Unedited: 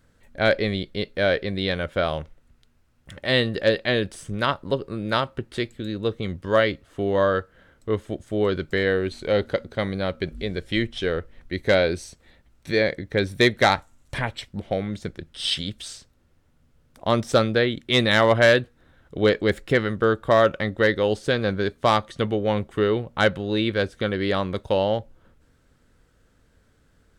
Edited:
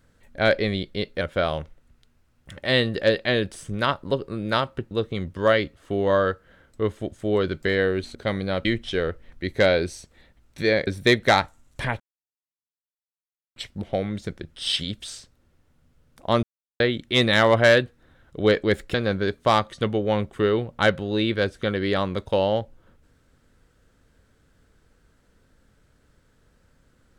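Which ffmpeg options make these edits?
-filter_complex "[0:a]asplit=10[a][b][c][d][e][f][g][h][i][j];[a]atrim=end=1.212[k];[b]atrim=start=1.808:end=5.512[l];[c]atrim=start=5.988:end=9.232[m];[d]atrim=start=9.668:end=10.172[n];[e]atrim=start=10.738:end=12.962[o];[f]atrim=start=13.208:end=14.34,asetpts=PTS-STARTPTS,afade=t=out:st=1.128:d=0.004:c=hsin,apad=pad_dur=1.56[p];[g]atrim=start=14.34:end=17.21,asetpts=PTS-STARTPTS,afade=t=in:d=0.004:c=hsin,afade=t=out:st=2.866:d=0.004:c=hsin[q];[h]atrim=start=17.21:end=17.58,asetpts=PTS-STARTPTS,volume=0[r];[i]atrim=start=17.58:end=19.722,asetpts=PTS-STARTPTS,afade=t=in:d=0.004:c=hsin[s];[j]atrim=start=21.318[t];[k][l]acrossfade=d=0.004:c1=hsin:c2=hsin[u];[u][m]acrossfade=d=0.004:c1=hsin:c2=hsin[v];[v][n]acrossfade=d=0.004:c1=hsin:c2=hsin[w];[w][o]acrossfade=d=0.004:c1=hsin:c2=hsin[x];[p][q][r][s]concat=n=4:v=0:a=1[y];[x][y]acrossfade=d=0.004:c1=hsin:c2=hsin[z];[z][t]acrossfade=d=0.004:c1=hsin:c2=hsin"

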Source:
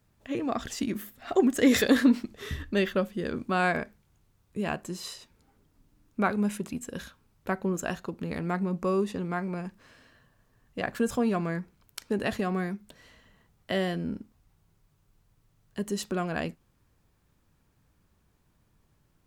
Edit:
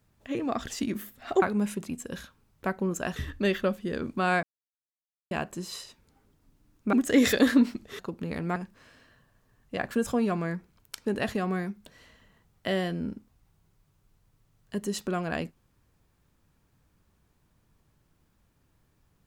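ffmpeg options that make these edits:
-filter_complex "[0:a]asplit=8[a][b][c][d][e][f][g][h];[a]atrim=end=1.422[i];[b]atrim=start=6.248:end=7.992[j];[c]atrim=start=2.478:end=3.75,asetpts=PTS-STARTPTS,afade=t=out:st=1.268:d=0.004:c=hsin[k];[d]atrim=start=3.75:end=4.63,asetpts=PTS-STARTPTS,volume=0[l];[e]atrim=start=4.63:end=6.252,asetpts=PTS-STARTPTS,afade=t=in:d=0.004:c=hsin[m];[f]atrim=start=1.418:end=2.482[n];[g]atrim=start=7.988:end=8.562[o];[h]atrim=start=9.598[p];[i][j]acrossfade=d=0.004:c1=hsin:c2=hsin[q];[k][l][m]concat=n=3:v=0:a=1[r];[q][r]acrossfade=d=0.004:c1=hsin:c2=hsin[s];[s][n]acrossfade=d=0.004:c1=hsin:c2=hsin[t];[t][o]acrossfade=d=0.004:c1=hsin:c2=hsin[u];[u][p]acrossfade=d=0.004:c1=hsin:c2=hsin"

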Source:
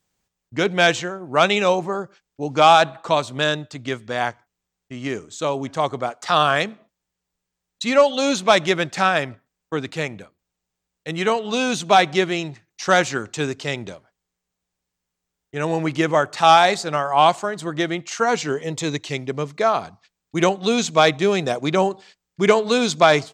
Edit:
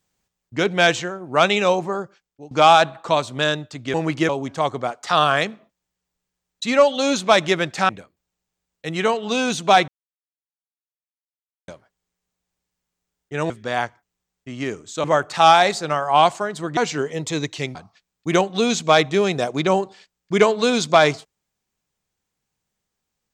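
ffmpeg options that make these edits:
-filter_complex "[0:a]asplit=11[a][b][c][d][e][f][g][h][i][j][k];[a]atrim=end=2.51,asetpts=PTS-STARTPTS,afade=t=out:st=2.02:d=0.49:silence=0.0841395[l];[b]atrim=start=2.51:end=3.942,asetpts=PTS-STARTPTS,afade=t=in:d=0.004:c=hsin:silence=0.0841395[m];[c]atrim=start=15.718:end=16.072[n];[d]atrim=start=5.478:end=9.082[o];[e]atrim=start=10.108:end=12.1,asetpts=PTS-STARTPTS,afade=t=out:st=1.988:d=0.004:c=hsin[p];[f]atrim=start=12.1:end=13.9,asetpts=PTS-STARTPTS,volume=0[q];[g]atrim=start=13.9:end=15.722,asetpts=PTS-STARTPTS,afade=t=in:d=0.004:c=hsin[r];[h]atrim=start=3.938:end=5.482[s];[i]atrim=start=16.068:end=17.802[t];[j]atrim=start=18.278:end=19.262[u];[k]atrim=start=19.828[v];[l][m]concat=n=2:v=0:a=1[w];[w][n]acrossfade=d=0.004:c1=hsin:c2=hsin[x];[x][o]acrossfade=d=0.004:c1=hsin:c2=hsin[y];[p][q][r]concat=n=3:v=0:a=1[z];[y][z]acrossfade=d=0.004:c1=hsin:c2=hsin[aa];[aa][s]acrossfade=d=0.004:c1=hsin:c2=hsin[ab];[ab][t]acrossfade=d=0.004:c1=hsin:c2=hsin[ac];[ac][u]acrossfade=d=0.004:c1=hsin:c2=hsin[ad];[ad][v]acrossfade=d=0.004:c1=hsin:c2=hsin"

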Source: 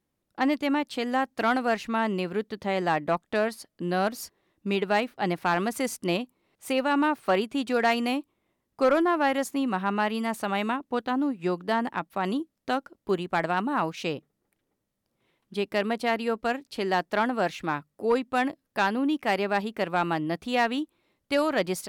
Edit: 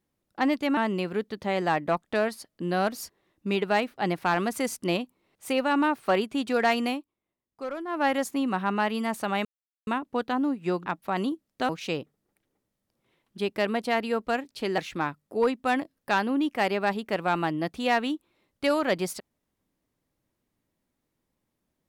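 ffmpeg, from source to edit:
-filter_complex "[0:a]asplit=8[a][b][c][d][e][f][g][h];[a]atrim=end=0.772[i];[b]atrim=start=1.968:end=8.25,asetpts=PTS-STARTPTS,afade=t=out:st=6.102:d=0.18:silence=0.237137[j];[c]atrim=start=8.25:end=9.07,asetpts=PTS-STARTPTS,volume=-12.5dB[k];[d]atrim=start=9.07:end=10.65,asetpts=PTS-STARTPTS,afade=t=in:d=0.18:silence=0.237137,afade=t=out:st=1.576:d=0.004:c=hsin,apad=pad_dur=0.42[l];[e]atrim=start=10.65:end=11.642,asetpts=PTS-STARTPTS,afade=t=in:d=0.004:c=hsin[m];[f]atrim=start=11.938:end=12.772[n];[g]atrim=start=13.848:end=16.942[o];[h]atrim=start=17.458[p];[j][k][l][m]concat=n=4:v=0:a=1[q];[i][q]acrossfade=d=0.004:c1=hsin:c2=hsin[r];[r][n]acrossfade=d=0.004:c1=hsin:c2=hsin[s];[s][o]acrossfade=d=0.004:c1=hsin:c2=hsin[t];[t][p]acrossfade=d=0.004:c1=hsin:c2=hsin"

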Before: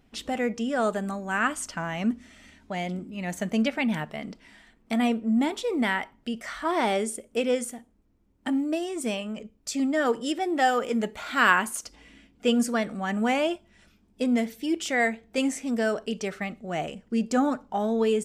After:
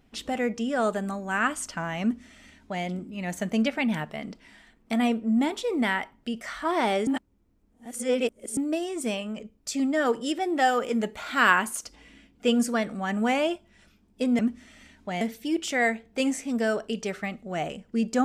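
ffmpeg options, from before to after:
-filter_complex "[0:a]asplit=5[a][b][c][d][e];[a]atrim=end=7.072[f];[b]atrim=start=7.068:end=8.572,asetpts=PTS-STARTPTS,areverse[g];[c]atrim=start=8.568:end=14.392[h];[d]atrim=start=2.018:end=2.842[i];[e]atrim=start=14.388[j];[f][g]acrossfade=d=0.004:c1=hsin:c2=hsin[k];[k][h]acrossfade=d=0.004:c1=hsin:c2=hsin[l];[l][i]acrossfade=d=0.004:c1=hsin:c2=hsin[m];[m][j]acrossfade=d=0.004:c1=hsin:c2=hsin"

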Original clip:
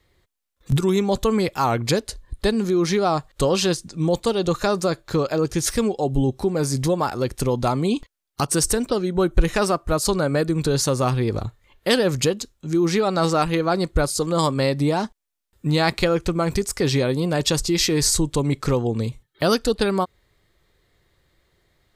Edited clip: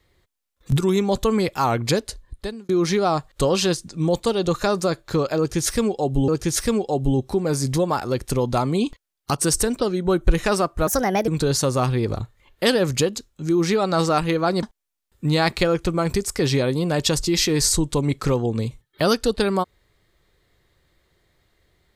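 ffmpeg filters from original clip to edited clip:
-filter_complex "[0:a]asplit=6[a][b][c][d][e][f];[a]atrim=end=2.69,asetpts=PTS-STARTPTS,afade=t=out:st=2.06:d=0.63[g];[b]atrim=start=2.69:end=6.282,asetpts=PTS-STARTPTS,afade=t=in:d=0.004:c=hsin[h];[c]atrim=start=5.378:end=9.974[i];[d]atrim=start=9.97:end=10.52,asetpts=PTS-STARTPTS,asetrate=59535,aresample=44100[j];[e]atrim=start=10.516:end=13.872[k];[f]atrim=start=15.038[l];[g][h]concat=n=2:v=0:a=1[m];[m][i]acrossfade=d=0.004:c1=hsin:c2=hsin[n];[n][j]acrossfade=d=0.004:c1=hsin:c2=hsin[o];[o][k]acrossfade=d=0.004:c1=hsin:c2=hsin[p];[p][l]acrossfade=d=0.004:c1=hsin:c2=hsin"

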